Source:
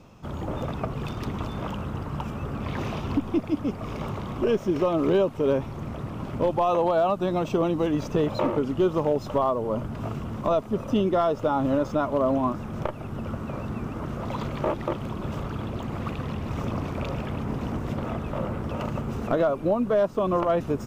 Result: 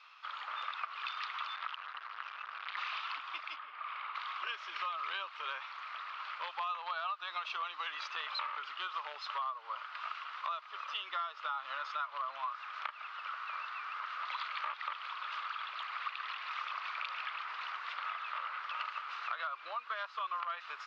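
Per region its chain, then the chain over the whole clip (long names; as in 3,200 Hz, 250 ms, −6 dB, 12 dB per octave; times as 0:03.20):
0:01.56–0:02.77: linear-phase brick-wall low-pass 6,500 Hz + saturating transformer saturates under 850 Hz
0:03.56–0:04.15: downward compressor, threshold −30 dBFS + high-frequency loss of the air 320 metres + flutter between parallel walls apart 8.9 metres, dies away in 0.56 s
whole clip: elliptic band-pass filter 1,200–4,400 Hz, stop band 70 dB; downward compressor 6 to 1, threshold −40 dBFS; level +5 dB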